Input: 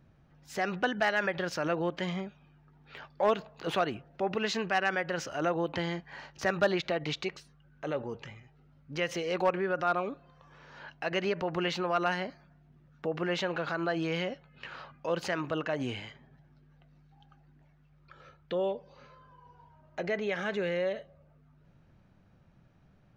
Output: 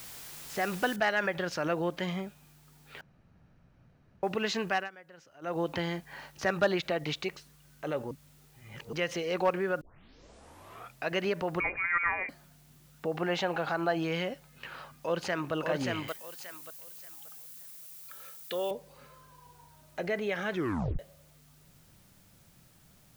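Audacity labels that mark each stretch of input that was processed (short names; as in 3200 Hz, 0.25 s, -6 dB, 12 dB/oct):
0.960000	0.960000	noise floor step -46 dB -64 dB
3.010000	4.230000	room tone
4.730000	5.580000	dip -20.5 dB, fades 0.17 s
8.110000	8.930000	reverse
9.810000	9.810000	tape start 1.29 s
11.600000	12.290000	inverted band carrier 2600 Hz
13.140000	14.040000	bell 780 Hz +11 dB 0.29 oct
14.950000	15.540000	echo throw 0.58 s, feedback 25%, level -3 dB
16.080000	18.710000	RIAA curve recording
20.520000	20.520000	tape stop 0.47 s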